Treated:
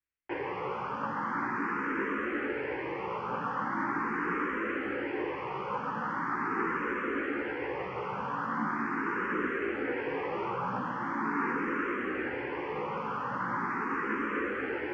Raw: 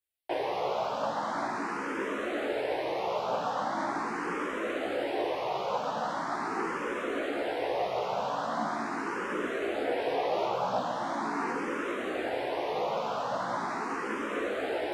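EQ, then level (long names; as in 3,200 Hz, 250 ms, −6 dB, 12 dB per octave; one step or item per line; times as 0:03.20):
low-pass filter 3,300 Hz 12 dB per octave
high-frequency loss of the air 55 metres
phaser with its sweep stopped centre 1,600 Hz, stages 4
+4.5 dB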